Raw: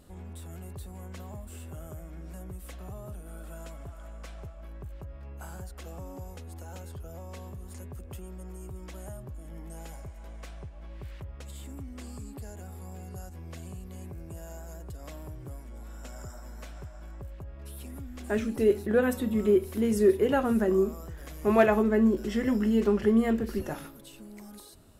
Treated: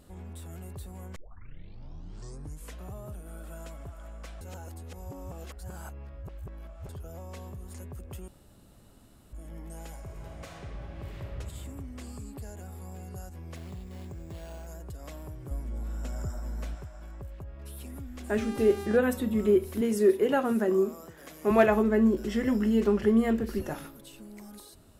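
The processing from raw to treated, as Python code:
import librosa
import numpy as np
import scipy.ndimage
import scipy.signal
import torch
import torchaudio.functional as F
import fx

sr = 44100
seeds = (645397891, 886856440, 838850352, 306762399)

y = fx.reverb_throw(x, sr, start_s=10.0, length_s=1.36, rt60_s=2.5, drr_db=-2.0)
y = fx.resample_bad(y, sr, factor=6, down='none', up='hold', at=(13.56, 14.67))
y = fx.low_shelf(y, sr, hz=420.0, db=9.0, at=(15.51, 16.75))
y = fx.dmg_buzz(y, sr, base_hz=400.0, harmonics=26, level_db=-40.0, tilt_db=-7, odd_only=False, at=(18.37, 18.96), fade=0.02)
y = fx.highpass(y, sr, hz=190.0, slope=12, at=(19.81, 21.51))
y = fx.edit(y, sr, fx.tape_start(start_s=1.16, length_s=1.68),
    fx.reverse_span(start_s=4.41, length_s=2.48),
    fx.room_tone_fill(start_s=8.28, length_s=1.05), tone=tone)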